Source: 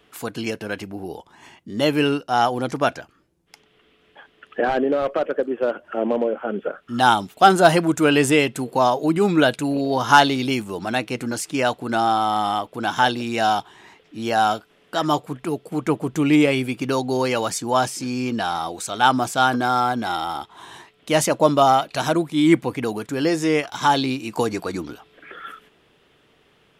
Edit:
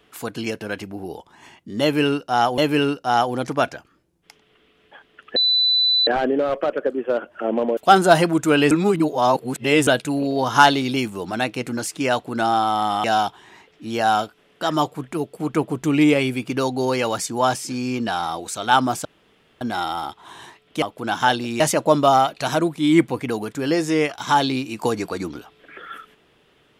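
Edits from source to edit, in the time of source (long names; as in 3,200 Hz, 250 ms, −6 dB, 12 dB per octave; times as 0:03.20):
0:01.82–0:02.58: repeat, 2 plays
0:04.60: insert tone 3,990 Hz −14.5 dBFS 0.71 s
0:06.30–0:07.31: remove
0:08.25–0:09.41: reverse
0:12.58–0:13.36: move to 0:21.14
0:19.37–0:19.93: fill with room tone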